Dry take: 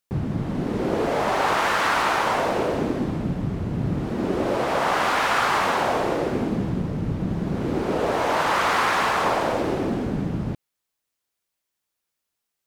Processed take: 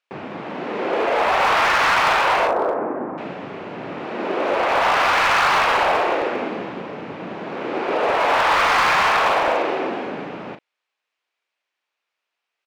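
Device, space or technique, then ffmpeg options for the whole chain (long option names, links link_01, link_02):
megaphone: -filter_complex "[0:a]asettb=1/sr,asplit=3[link_01][link_02][link_03];[link_01]atrim=end=2.474[link_04];[link_02]atrim=start=2.47:end=3.18,asetpts=PTS-STARTPTS,afade=type=in:duration=0.004:curve=qsin,afade=type=out:start_time=0.706:duration=0.004:curve=qsin,lowpass=frequency=1400:width=0.5412,lowpass=frequency=1400:width=1.3066[link_05];[link_03]atrim=start=3.176[link_06];[link_04][link_05]acrossfade=duration=0.004:curve1=hsin:curve2=qsin[link_07];[link_07][link_06]acrossfade=duration=0.004:curve1=qsin:curve2=hsin,highpass=530,lowpass=3200,equalizer=frequency=2500:width_type=o:width=0.44:gain=5,asoftclip=type=hard:threshold=-20.5dB,asplit=2[link_08][link_09];[link_09]adelay=39,volume=-9dB[link_10];[link_08][link_10]amix=inputs=2:normalize=0,volume=6.5dB"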